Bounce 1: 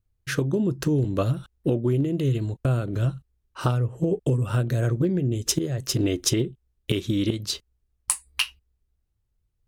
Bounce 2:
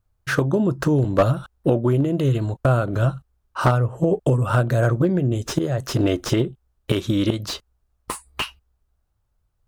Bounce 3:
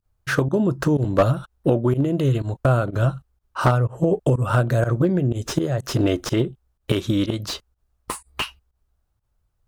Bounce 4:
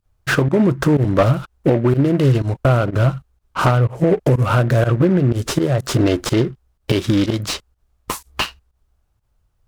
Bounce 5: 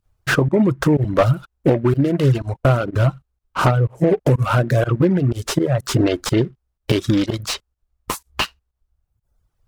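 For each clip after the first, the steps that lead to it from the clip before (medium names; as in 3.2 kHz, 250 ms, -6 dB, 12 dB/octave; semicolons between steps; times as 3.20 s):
high-order bell 920 Hz +8.5 dB; slew-rate limiter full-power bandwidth 150 Hz; trim +3.5 dB
volume shaper 124 bpm, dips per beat 1, -20 dB, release 82 ms
in parallel at +2.5 dB: peak limiter -13.5 dBFS, peak gain reduction 11 dB; on the sum: delay time shaken by noise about 1.3 kHz, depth 0.032 ms; trim -1.5 dB
reverb removal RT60 0.87 s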